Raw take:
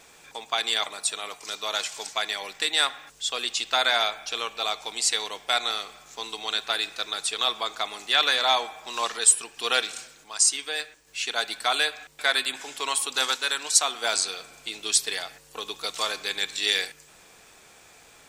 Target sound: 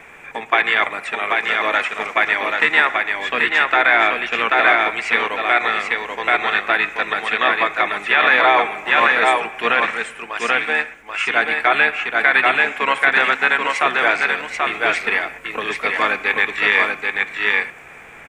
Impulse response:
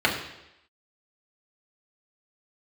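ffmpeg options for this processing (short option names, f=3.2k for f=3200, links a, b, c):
-filter_complex "[0:a]acrossover=split=5100[a][b];[b]acompressor=threshold=-46dB:ratio=4:attack=1:release=60[c];[a][c]amix=inputs=2:normalize=0,asplit=2[d][e];[e]asetrate=22050,aresample=44100,atempo=2,volume=-11dB[f];[d][f]amix=inputs=2:normalize=0,highshelf=f=3.1k:t=q:w=3:g=-12.5,acrossover=split=100[g][h];[h]aecho=1:1:784:0.668[i];[g][i]amix=inputs=2:normalize=0,alimiter=level_in=10.5dB:limit=-1dB:release=50:level=0:latency=1,volume=-1dB"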